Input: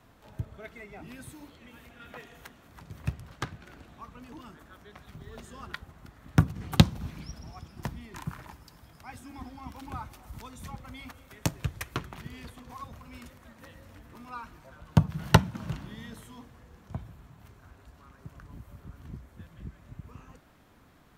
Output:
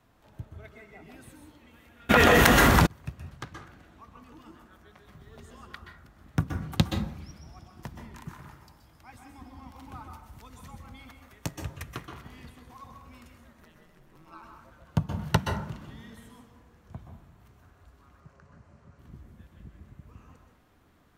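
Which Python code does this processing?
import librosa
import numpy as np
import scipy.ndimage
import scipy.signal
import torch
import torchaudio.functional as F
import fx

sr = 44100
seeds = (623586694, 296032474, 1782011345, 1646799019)

y = fx.ring_mod(x, sr, carrier_hz=82.0, at=(13.6, 14.41), fade=0.02)
y = fx.cabinet(y, sr, low_hz=100.0, low_slope=12, high_hz=7500.0, hz=(300.0, 550.0, 3400.0), db=(-9, 4, -7), at=(18.2, 18.99))
y = fx.rev_plate(y, sr, seeds[0], rt60_s=0.58, hf_ratio=0.45, predelay_ms=115, drr_db=3.5)
y = fx.env_flatten(y, sr, amount_pct=100, at=(2.09, 2.85), fade=0.02)
y = F.gain(torch.from_numpy(y), -5.5).numpy()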